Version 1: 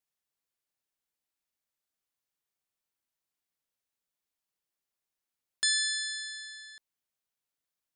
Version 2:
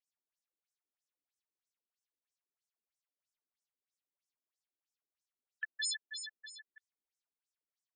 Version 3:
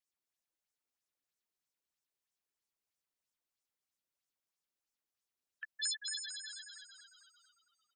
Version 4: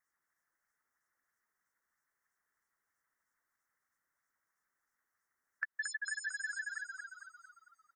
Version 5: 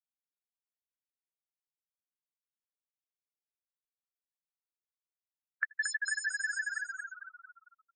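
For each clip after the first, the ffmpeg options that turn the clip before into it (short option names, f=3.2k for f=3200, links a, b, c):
-af "afftfilt=real='re*between(b*sr/1024,280*pow(7400/280,0.5+0.5*sin(2*PI*3.1*pts/sr))/1.41,280*pow(7400/280,0.5+0.5*sin(2*PI*3.1*pts/sr))*1.41)':imag='im*between(b*sr/1024,280*pow(7400/280,0.5+0.5*sin(2*PI*3.1*pts/sr))/1.41,280*pow(7400/280,0.5+0.5*sin(2*PI*3.1*pts/sr))*1.41)':win_size=1024:overlap=0.75"
-filter_complex "[0:a]acrossover=split=2300[a][b];[a]acompressor=threshold=-51dB:ratio=6[c];[c][b]amix=inputs=2:normalize=0,asplit=8[d][e][f][g][h][i][j][k];[e]adelay=225,afreqshift=-73,volume=-5dB[l];[f]adelay=450,afreqshift=-146,volume=-10.5dB[m];[g]adelay=675,afreqshift=-219,volume=-16dB[n];[h]adelay=900,afreqshift=-292,volume=-21.5dB[o];[i]adelay=1125,afreqshift=-365,volume=-27.1dB[p];[j]adelay=1350,afreqshift=-438,volume=-32.6dB[q];[k]adelay=1575,afreqshift=-511,volume=-38.1dB[r];[d][l][m][n][o][p][q][r]amix=inputs=8:normalize=0"
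-af "firequalizer=gain_entry='entry(610,0);entry(1300,13);entry(1900,14);entry(2900,-29);entry(5600,-2)':delay=0.05:min_phase=1,acompressor=threshold=-39dB:ratio=10,volume=4dB"
-af "highpass=1k,aecho=1:1:82:0.0631,afftfilt=real='re*gte(hypot(re,im),0.00562)':imag='im*gte(hypot(re,im),0.00562)':win_size=1024:overlap=0.75,volume=6dB"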